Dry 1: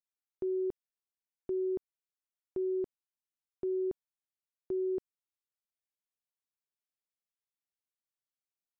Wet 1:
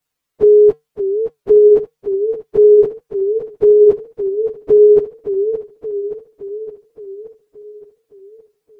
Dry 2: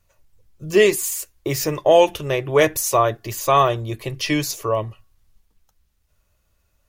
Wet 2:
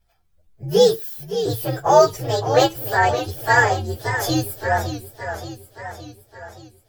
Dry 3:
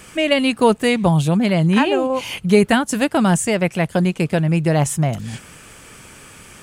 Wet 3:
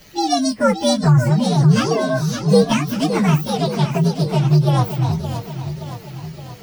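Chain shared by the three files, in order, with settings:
partials spread apart or drawn together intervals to 128%
tuned comb filter 150 Hz, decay 0.18 s, harmonics odd, mix 50%
feedback echo with a swinging delay time 570 ms, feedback 58%, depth 133 cents, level −10 dB
normalise the peak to −2 dBFS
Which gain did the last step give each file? +31.0, +7.5, +6.0 decibels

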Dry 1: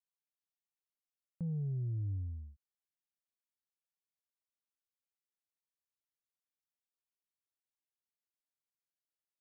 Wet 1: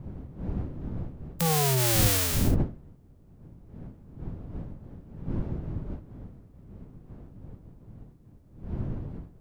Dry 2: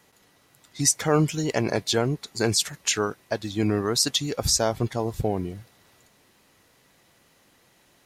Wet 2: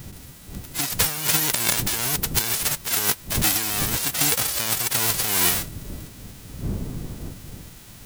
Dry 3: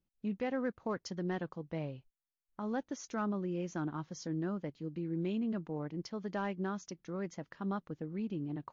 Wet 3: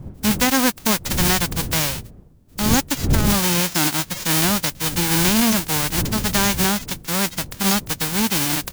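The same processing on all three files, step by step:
spectral envelope flattened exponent 0.1
wind on the microphone 160 Hz −44 dBFS
compressor whose output falls as the input rises −31 dBFS, ratio −1
normalise the peak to −3 dBFS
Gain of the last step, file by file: +11.5, +8.0, +17.5 decibels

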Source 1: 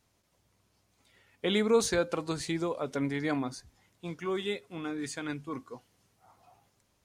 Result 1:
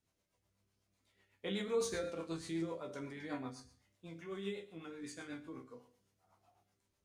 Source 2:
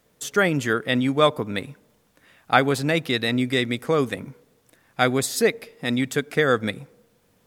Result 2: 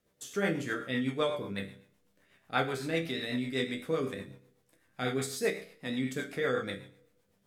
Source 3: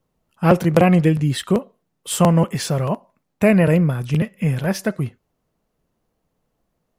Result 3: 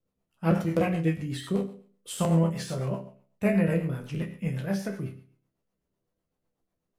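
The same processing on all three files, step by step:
resonators tuned to a chord C2 major, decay 0.5 s
rotating-speaker cabinet horn 8 Hz
level +5 dB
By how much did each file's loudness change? −10.0, −11.0, −10.0 LU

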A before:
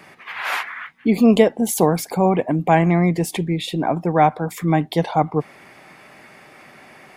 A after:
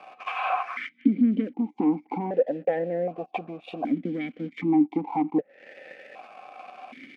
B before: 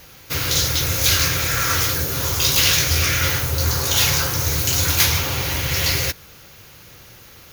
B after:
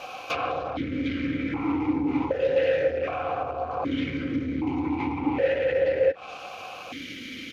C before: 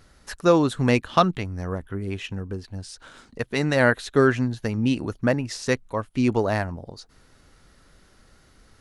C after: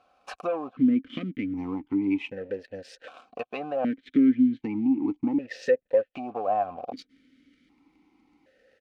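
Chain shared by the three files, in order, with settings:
treble cut that deepens with the level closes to 930 Hz, closed at −17.5 dBFS
comb filter 3.9 ms, depth 36%
leveller curve on the samples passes 2
downward compressor 3 to 1, threshold −28 dBFS
formant filter that steps through the vowels 1.3 Hz
loudness normalisation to −27 LKFS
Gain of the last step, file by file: +11.0, +15.0, +10.5 decibels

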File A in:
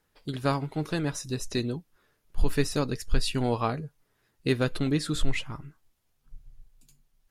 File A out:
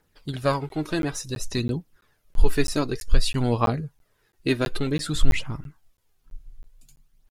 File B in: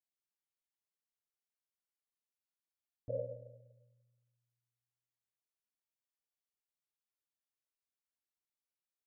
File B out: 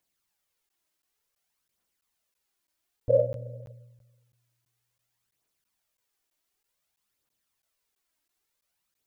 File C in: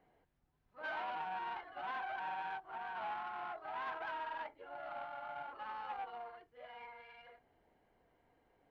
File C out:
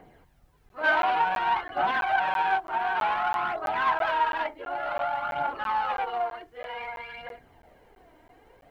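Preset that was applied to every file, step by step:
phase shifter 0.55 Hz, delay 3.3 ms, feedback 45%
regular buffer underruns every 0.33 s, samples 512, zero, from 0:00.69
loudness normalisation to −27 LKFS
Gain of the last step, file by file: +2.5, +13.5, +15.5 decibels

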